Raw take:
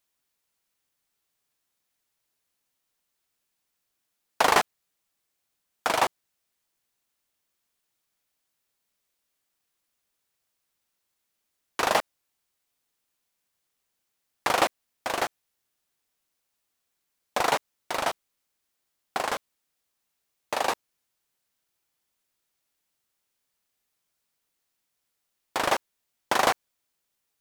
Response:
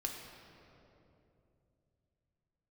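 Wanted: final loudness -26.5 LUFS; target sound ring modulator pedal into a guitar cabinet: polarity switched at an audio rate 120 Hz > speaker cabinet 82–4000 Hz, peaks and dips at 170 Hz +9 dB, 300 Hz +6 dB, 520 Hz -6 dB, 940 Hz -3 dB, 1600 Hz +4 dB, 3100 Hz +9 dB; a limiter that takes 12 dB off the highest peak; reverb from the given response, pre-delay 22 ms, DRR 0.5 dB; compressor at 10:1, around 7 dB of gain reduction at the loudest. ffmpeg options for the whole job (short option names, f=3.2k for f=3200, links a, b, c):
-filter_complex "[0:a]acompressor=threshold=-23dB:ratio=10,alimiter=limit=-19.5dB:level=0:latency=1,asplit=2[a][b];[1:a]atrim=start_sample=2205,adelay=22[c];[b][c]afir=irnorm=-1:irlink=0,volume=-1dB[d];[a][d]amix=inputs=2:normalize=0,aeval=exprs='val(0)*sgn(sin(2*PI*120*n/s))':c=same,highpass=82,equalizer=f=170:t=q:w=4:g=9,equalizer=f=300:t=q:w=4:g=6,equalizer=f=520:t=q:w=4:g=-6,equalizer=f=940:t=q:w=4:g=-3,equalizer=f=1.6k:t=q:w=4:g=4,equalizer=f=3.1k:t=q:w=4:g=9,lowpass=f=4k:w=0.5412,lowpass=f=4k:w=1.3066,volume=6.5dB"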